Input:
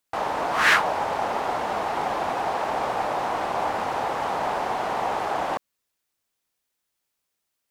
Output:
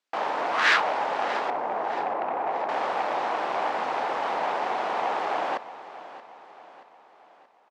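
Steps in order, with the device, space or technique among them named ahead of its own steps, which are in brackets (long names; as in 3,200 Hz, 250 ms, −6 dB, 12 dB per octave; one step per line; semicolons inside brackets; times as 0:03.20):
0:01.50–0:02.69: Chebyshev low-pass filter 900 Hz, order 2
public-address speaker with an overloaded transformer (saturating transformer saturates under 2,700 Hz; band-pass filter 270–5,100 Hz)
repeating echo 628 ms, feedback 49%, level −15.5 dB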